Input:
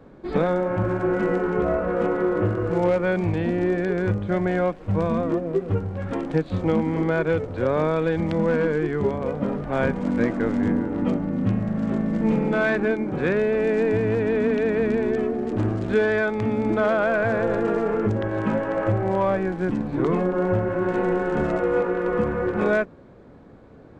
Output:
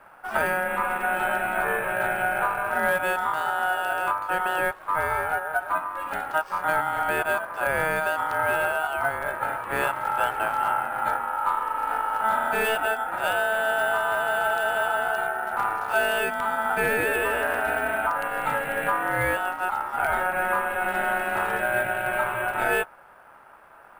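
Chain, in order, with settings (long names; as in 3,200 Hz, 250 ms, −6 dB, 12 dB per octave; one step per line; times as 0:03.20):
bad sample-rate conversion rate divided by 4×, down none, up hold
ring modulation 1,100 Hz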